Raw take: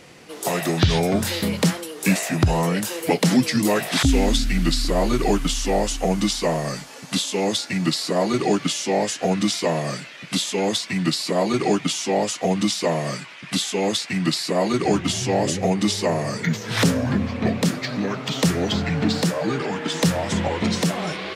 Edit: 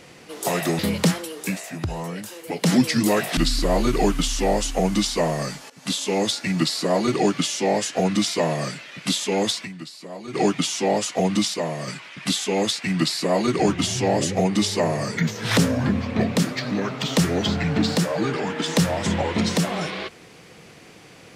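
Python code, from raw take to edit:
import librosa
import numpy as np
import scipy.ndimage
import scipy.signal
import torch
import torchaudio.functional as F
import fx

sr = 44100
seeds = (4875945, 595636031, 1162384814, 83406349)

y = fx.edit(x, sr, fx.cut(start_s=0.79, length_s=0.59),
    fx.fade_down_up(start_s=1.96, length_s=1.33, db=-9.5, fade_s=0.15),
    fx.cut(start_s=3.96, length_s=0.67),
    fx.fade_in_from(start_s=6.96, length_s=0.42, curve='qsin', floor_db=-18.5),
    fx.fade_down_up(start_s=10.89, length_s=0.74, db=-15.5, fade_s=0.31, curve='exp'),
    fx.clip_gain(start_s=12.8, length_s=0.34, db=-4.5), tone=tone)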